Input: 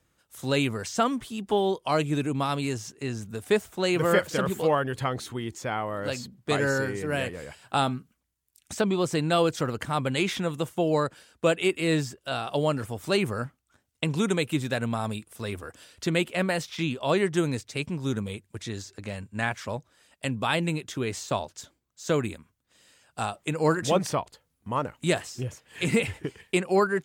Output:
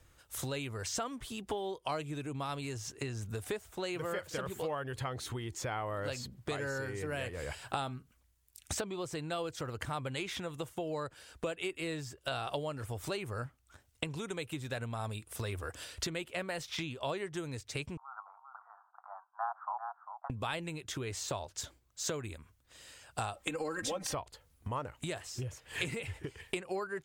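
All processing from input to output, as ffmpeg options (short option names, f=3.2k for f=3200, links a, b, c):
-filter_complex "[0:a]asettb=1/sr,asplit=3[a][b][c];[a]atrim=end=17.974[d];[b]atrim=start=17.97:end=20.3,asetpts=PTS-STARTPTS,afade=t=in:d=0.004:c=qsin,afade=t=out:st=2.326:d=0.004:c=qsin,asuperpass=centerf=1000:order=12:qfactor=1.5,aecho=1:1:397:0.266,atrim=end_sample=102753[e];[c]atrim=start=20.296[f];[d][e]acrossfade=d=0.004:c1=hsin:c2=qsin[g];[g][f]acrossfade=d=0.004:c1=qsin:c2=hsin,asettb=1/sr,asplit=3[h][i][j];[h]atrim=end=23.364[k];[i]atrim=start=23.36:end=24.14,asetpts=PTS-STARTPTS,afade=t=in:d=0.004:c=qsin,afade=t=out:st=0.776:d=0.004:c=qsin,aecho=1:1:3.8:0.99,atrim=end_sample=34398,acompressor=threshold=-23dB:ratio=4:attack=3.2:release=140:knee=1:detection=peak[l];[j]atrim=start=24.136[m];[k][l]acrossfade=d=0.004:c1=hsin:c2=qsin[n];[n][m]acrossfade=d=0.004:c1=qsin:c2=hsin,lowshelf=f=120:g=9.5,acompressor=threshold=-37dB:ratio=10,equalizer=f=200:w=1.3:g=-9.5,volume=5dB"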